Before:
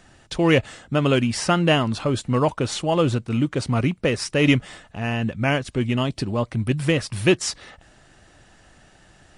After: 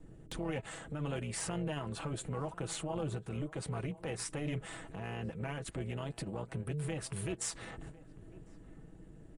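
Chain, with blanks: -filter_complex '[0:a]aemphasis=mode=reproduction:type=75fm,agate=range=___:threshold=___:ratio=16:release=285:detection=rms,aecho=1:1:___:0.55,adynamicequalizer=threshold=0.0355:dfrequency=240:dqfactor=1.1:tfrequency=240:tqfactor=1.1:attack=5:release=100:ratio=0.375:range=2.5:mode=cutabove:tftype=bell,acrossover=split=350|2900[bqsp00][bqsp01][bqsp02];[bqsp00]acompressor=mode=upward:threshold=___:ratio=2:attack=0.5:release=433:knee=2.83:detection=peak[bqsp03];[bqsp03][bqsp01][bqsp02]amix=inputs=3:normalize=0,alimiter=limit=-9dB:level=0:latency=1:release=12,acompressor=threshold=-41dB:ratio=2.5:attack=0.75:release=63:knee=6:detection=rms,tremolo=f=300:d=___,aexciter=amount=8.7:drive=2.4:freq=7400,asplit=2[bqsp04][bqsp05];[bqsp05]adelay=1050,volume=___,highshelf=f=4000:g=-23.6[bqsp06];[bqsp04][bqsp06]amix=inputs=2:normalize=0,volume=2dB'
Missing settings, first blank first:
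-17dB, -44dB, 6.1, -26dB, 0.71, -19dB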